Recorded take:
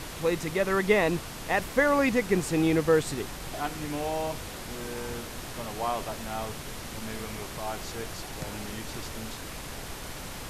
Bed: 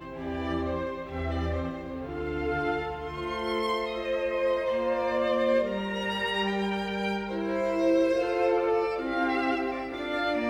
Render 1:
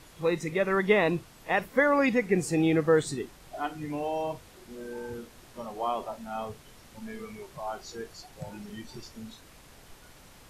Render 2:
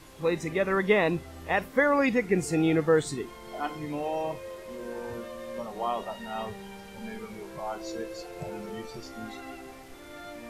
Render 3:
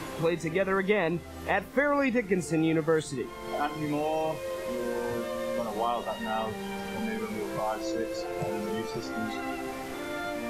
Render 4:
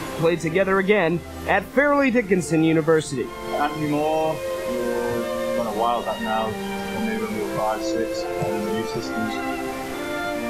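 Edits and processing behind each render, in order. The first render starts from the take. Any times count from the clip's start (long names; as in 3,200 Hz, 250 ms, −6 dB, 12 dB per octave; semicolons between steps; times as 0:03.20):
noise reduction from a noise print 14 dB
mix in bed −15 dB
multiband upward and downward compressor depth 70%
level +7.5 dB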